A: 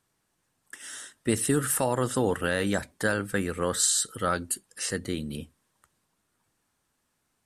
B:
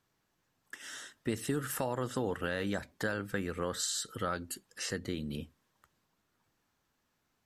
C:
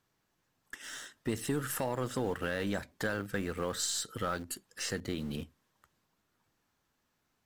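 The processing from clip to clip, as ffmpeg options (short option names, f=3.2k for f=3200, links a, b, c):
-af "equalizer=f=9.3k:t=o:w=0.41:g=-14.5,acompressor=threshold=-33dB:ratio=2,volume=-1.5dB"
-filter_complex "[0:a]asplit=2[a][b];[b]acrusher=bits=4:dc=4:mix=0:aa=0.000001,volume=-10dB[c];[a][c]amix=inputs=2:normalize=0,asoftclip=type=tanh:threshold=-21dB"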